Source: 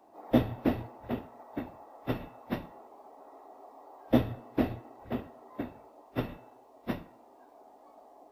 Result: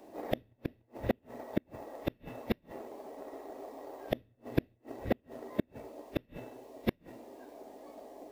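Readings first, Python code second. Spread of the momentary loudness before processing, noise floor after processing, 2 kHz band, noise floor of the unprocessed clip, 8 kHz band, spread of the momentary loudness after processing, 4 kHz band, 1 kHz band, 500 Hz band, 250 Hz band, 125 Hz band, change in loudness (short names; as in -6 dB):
23 LU, -70 dBFS, -1.0 dB, -58 dBFS, n/a, 14 LU, -1.5 dB, -4.0 dB, -1.5 dB, -5.5 dB, -5.0 dB, -5.0 dB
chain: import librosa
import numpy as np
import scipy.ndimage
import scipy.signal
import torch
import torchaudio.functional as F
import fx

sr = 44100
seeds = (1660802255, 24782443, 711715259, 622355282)

p1 = fx.band_shelf(x, sr, hz=1000.0, db=-10.0, octaves=1.2)
p2 = fx.gate_flip(p1, sr, shuts_db=-29.0, range_db=-39)
p3 = np.sign(p2) * np.maximum(np.abs(p2) - 10.0 ** (-51.5 / 20.0), 0.0)
p4 = p2 + (p3 * 10.0 ** (-4.5 / 20.0))
y = p4 * 10.0 ** (10.0 / 20.0)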